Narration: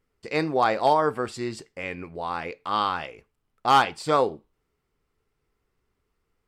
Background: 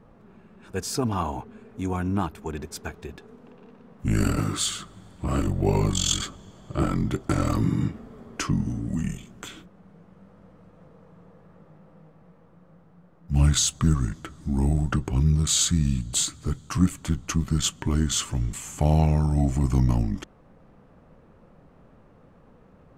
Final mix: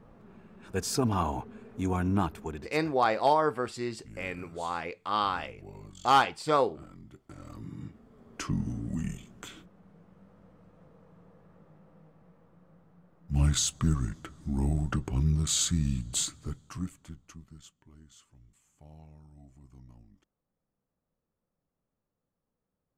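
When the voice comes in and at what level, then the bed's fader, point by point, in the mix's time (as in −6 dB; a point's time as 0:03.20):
2.40 s, −3.5 dB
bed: 0:02.39 −1.5 dB
0:03.14 −25 dB
0:07.27 −25 dB
0:08.58 −5.5 dB
0:16.27 −5.5 dB
0:17.86 −32 dB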